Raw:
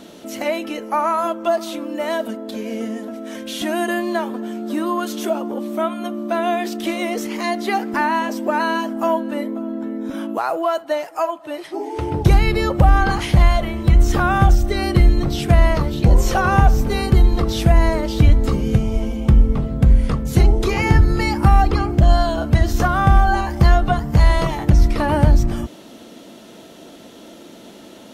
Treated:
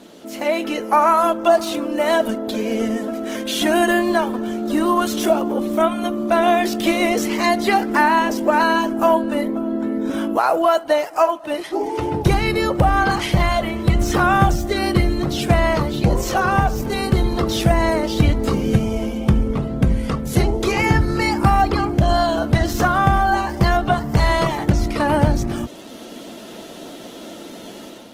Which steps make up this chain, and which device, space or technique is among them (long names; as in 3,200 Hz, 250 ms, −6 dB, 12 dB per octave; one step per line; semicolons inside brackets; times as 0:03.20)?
video call (high-pass filter 150 Hz 6 dB per octave; automatic gain control gain up to 7 dB; level −1 dB; Opus 16 kbit/s 48,000 Hz)